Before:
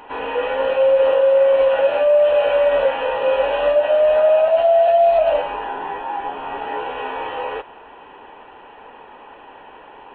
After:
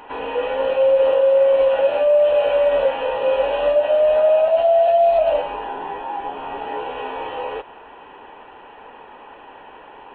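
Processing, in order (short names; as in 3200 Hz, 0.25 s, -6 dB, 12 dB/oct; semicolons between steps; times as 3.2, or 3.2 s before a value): dynamic EQ 1600 Hz, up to -5 dB, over -34 dBFS, Q 1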